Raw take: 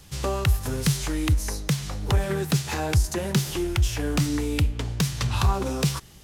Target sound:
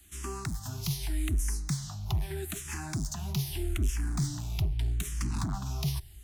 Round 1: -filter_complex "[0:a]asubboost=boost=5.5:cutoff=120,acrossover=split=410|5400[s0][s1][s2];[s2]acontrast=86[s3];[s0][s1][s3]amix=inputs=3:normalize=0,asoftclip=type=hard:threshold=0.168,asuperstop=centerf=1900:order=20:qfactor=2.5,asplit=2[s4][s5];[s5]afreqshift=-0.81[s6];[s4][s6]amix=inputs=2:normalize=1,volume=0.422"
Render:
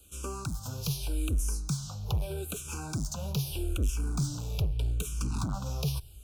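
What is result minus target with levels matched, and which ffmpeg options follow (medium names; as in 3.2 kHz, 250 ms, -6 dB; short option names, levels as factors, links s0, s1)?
2 kHz band -3.5 dB
-filter_complex "[0:a]asubboost=boost=5.5:cutoff=120,acrossover=split=410|5400[s0][s1][s2];[s2]acontrast=86[s3];[s0][s1][s3]amix=inputs=3:normalize=0,asoftclip=type=hard:threshold=0.168,asuperstop=centerf=500:order=20:qfactor=2.5,asplit=2[s4][s5];[s5]afreqshift=-0.81[s6];[s4][s6]amix=inputs=2:normalize=1,volume=0.422"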